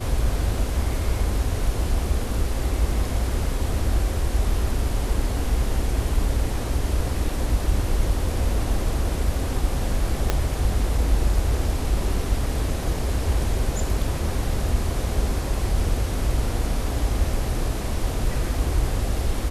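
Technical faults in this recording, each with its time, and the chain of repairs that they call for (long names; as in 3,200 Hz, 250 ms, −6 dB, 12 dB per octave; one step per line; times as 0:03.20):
0:10.30: click −6 dBFS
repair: click removal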